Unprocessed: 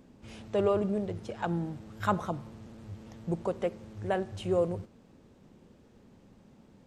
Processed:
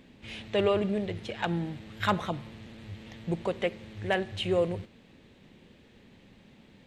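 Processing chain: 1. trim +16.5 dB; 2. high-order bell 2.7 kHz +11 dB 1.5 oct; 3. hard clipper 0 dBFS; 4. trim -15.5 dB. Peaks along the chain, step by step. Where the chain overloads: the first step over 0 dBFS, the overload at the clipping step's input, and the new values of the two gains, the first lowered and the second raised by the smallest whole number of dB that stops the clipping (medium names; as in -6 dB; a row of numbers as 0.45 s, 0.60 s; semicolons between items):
+3.0 dBFS, +3.5 dBFS, 0.0 dBFS, -15.5 dBFS; step 1, 3.5 dB; step 1 +12.5 dB, step 4 -11.5 dB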